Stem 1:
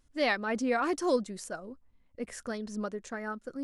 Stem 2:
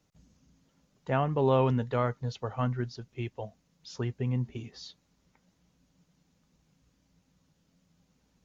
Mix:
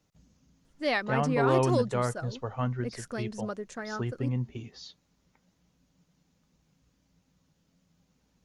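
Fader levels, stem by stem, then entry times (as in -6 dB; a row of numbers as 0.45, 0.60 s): 0.0, -0.5 dB; 0.65, 0.00 s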